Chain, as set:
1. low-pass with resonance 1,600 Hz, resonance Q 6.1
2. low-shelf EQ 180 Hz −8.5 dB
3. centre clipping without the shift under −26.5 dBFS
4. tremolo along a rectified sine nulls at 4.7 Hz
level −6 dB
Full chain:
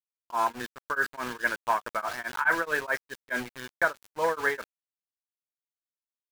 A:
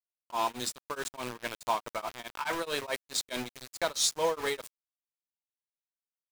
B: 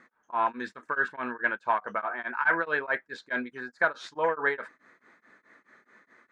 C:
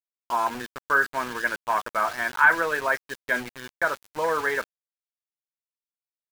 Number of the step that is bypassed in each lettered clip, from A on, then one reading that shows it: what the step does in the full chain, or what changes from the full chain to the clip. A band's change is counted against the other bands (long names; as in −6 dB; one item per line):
1, 8 kHz band +12.5 dB
3, distortion level −16 dB
4, change in momentary loudness spread +2 LU